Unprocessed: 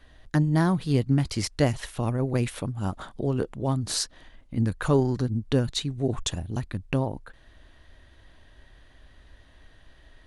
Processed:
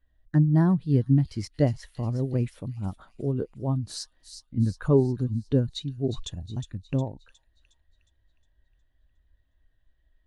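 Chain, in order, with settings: thin delay 0.361 s, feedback 60%, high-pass 3000 Hz, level -5 dB; spectral expander 1.5:1

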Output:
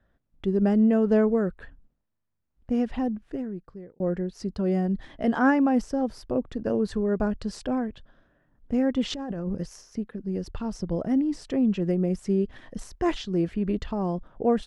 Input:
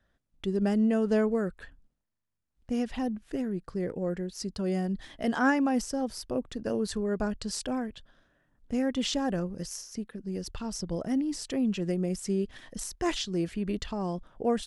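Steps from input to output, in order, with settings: LPF 1300 Hz 6 dB/oct; 2.95–4 fade out; 9.1–9.57 negative-ratio compressor -36 dBFS, ratio -1; gain +5 dB

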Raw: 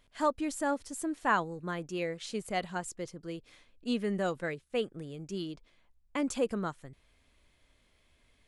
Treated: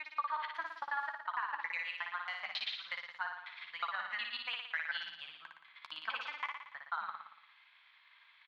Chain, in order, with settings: slices in reverse order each 91 ms, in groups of 6; elliptic band-pass 920–4000 Hz, stop band 40 dB; bell 1600 Hz +5.5 dB 1.6 oct; reverse; compressor 8:1, threshold -42 dBFS, peak gain reduction 22 dB; reverse; limiter -37 dBFS, peak gain reduction 9.5 dB; transient shaper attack +9 dB, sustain -3 dB; doubler 13 ms -11 dB; on a send: flutter echo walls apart 9.9 m, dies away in 0.8 s; on the sum: gain +3.5 dB

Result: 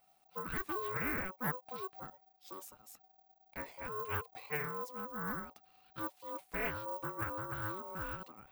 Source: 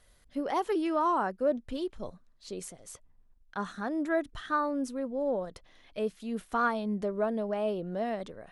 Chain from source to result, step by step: careless resampling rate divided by 2×, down filtered, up zero stuff; ring modulator 750 Hz; Doppler distortion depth 0.45 ms; gain -7.5 dB

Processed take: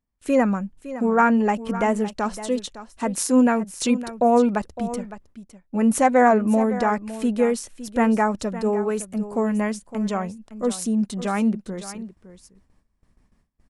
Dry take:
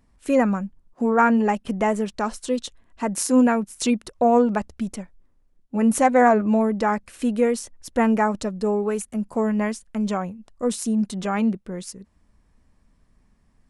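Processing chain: gate with hold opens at -50 dBFS; echo 0.56 s -14 dB

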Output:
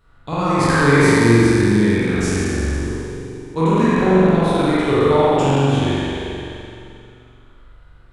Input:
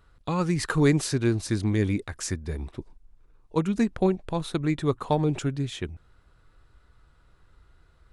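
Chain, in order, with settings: spectral trails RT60 2.63 s; spring tank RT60 1.6 s, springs 43 ms, chirp 70 ms, DRR -7.5 dB; gain -1.5 dB

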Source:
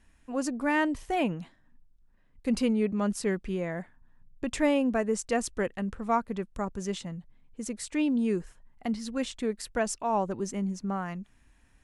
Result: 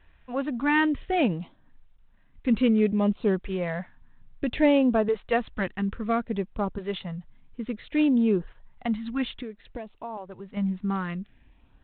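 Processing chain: 9.33–10.57 compressor 8:1, threshold -38 dBFS, peak gain reduction 15 dB; LFO notch saw up 0.59 Hz 200–2400 Hz; gain +5 dB; G.726 32 kbps 8000 Hz

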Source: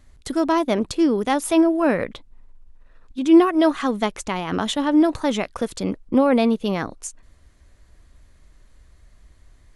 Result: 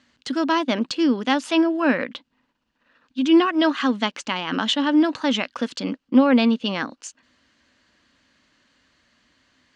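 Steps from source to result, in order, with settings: speaker cabinet 250–6700 Hz, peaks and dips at 250 Hz +8 dB, 400 Hz -9 dB, 690 Hz -5 dB, 1600 Hz +5 dB, 2900 Hz +9 dB, 4500 Hz +5 dB

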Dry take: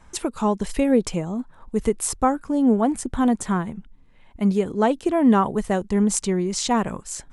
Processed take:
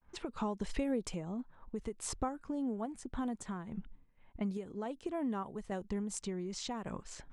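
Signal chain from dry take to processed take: expander -43 dBFS; low-pass opened by the level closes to 2400 Hz, open at -15 dBFS; compressor 6:1, threshold -28 dBFS, peak gain reduction 15 dB; random-step tremolo; gain -3.5 dB

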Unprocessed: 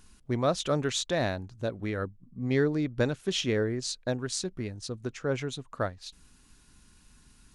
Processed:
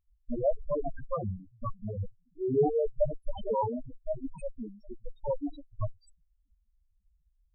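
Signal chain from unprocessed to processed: added harmonics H 2 -7 dB, 6 -6 dB, 7 -20 dB, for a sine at -13.5 dBFS; loudest bins only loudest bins 2; gain +3.5 dB

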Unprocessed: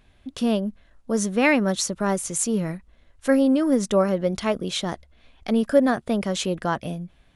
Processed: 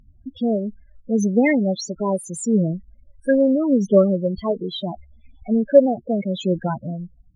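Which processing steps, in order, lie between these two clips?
loudest bins only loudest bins 8; phaser 0.76 Hz, delay 2.4 ms, feedback 38%; gain +3 dB

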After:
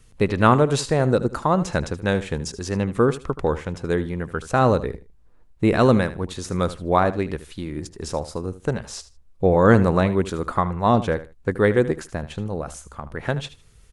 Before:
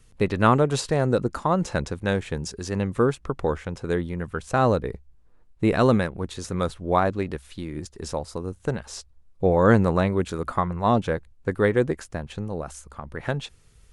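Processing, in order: feedback echo 77 ms, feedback 20%, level -15 dB; gain +2.5 dB

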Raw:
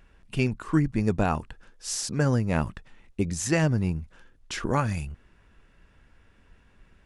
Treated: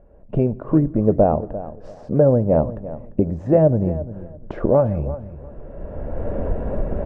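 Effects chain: recorder AGC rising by 20 dB/s; synth low-pass 590 Hz, resonance Q 4.9; short-mantissa float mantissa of 8-bit; feedback echo 0.346 s, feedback 21%, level -15 dB; on a send at -20 dB: reverb RT60 1.0 s, pre-delay 4 ms; on the sum: gain +4 dB

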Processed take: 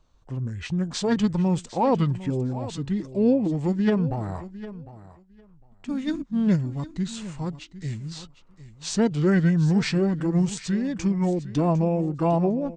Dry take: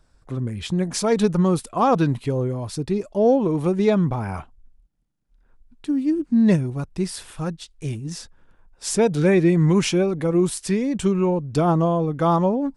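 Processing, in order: high shelf 9300 Hz -5.5 dB; formant shift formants -4 st; on a send: feedback echo 0.754 s, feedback 15%, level -15.5 dB; on the sum: gain -3 dB

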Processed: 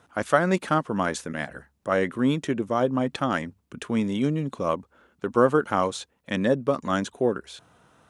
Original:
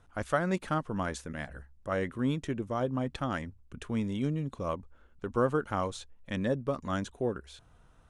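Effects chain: HPF 170 Hz 12 dB/oct; gain +8.5 dB

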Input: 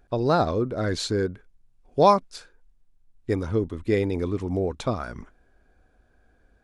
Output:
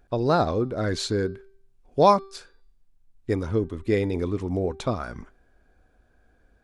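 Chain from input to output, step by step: de-hum 389.7 Hz, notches 13

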